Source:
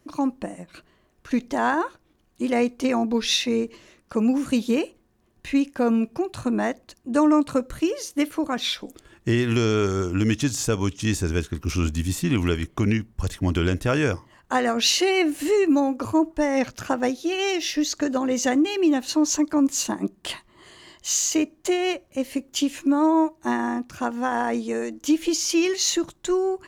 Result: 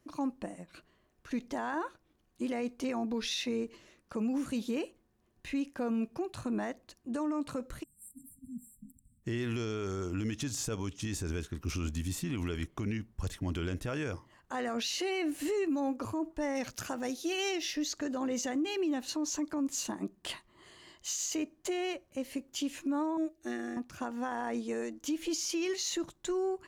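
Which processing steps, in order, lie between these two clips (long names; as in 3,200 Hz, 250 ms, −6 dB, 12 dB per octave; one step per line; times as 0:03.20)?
0:23.17–0:23.77: phaser with its sweep stopped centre 400 Hz, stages 4
brickwall limiter −18 dBFS, peak gain reduction 10 dB
0:07.83–0:09.24: time-frequency box erased 260–7,400 Hz
0:16.55–0:17.49: high-shelf EQ 4,600 Hz +10 dB
level −8 dB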